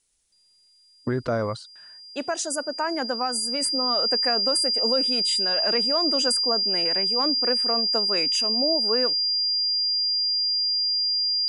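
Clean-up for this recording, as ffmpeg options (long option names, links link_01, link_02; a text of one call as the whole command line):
ffmpeg -i in.wav -af "bandreject=frequency=4800:width=30,agate=range=-21dB:threshold=-40dB" out.wav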